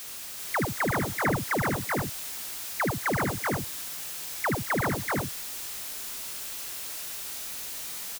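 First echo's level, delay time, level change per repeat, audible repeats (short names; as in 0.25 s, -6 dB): -6.0 dB, 75 ms, no steady repeat, 5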